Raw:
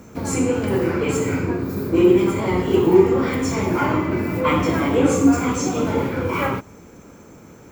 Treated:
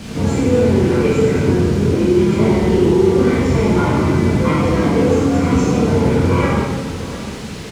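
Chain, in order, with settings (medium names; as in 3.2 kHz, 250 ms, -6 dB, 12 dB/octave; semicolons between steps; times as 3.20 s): bass shelf 370 Hz +10 dB; peak limiter -14 dBFS, peak gain reduction 17 dB; word length cut 6-bit, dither triangular; distance through air 87 m; echo from a far wall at 120 m, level -14 dB; plate-style reverb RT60 1.3 s, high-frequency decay 0.85×, DRR -4.5 dB; trim +1.5 dB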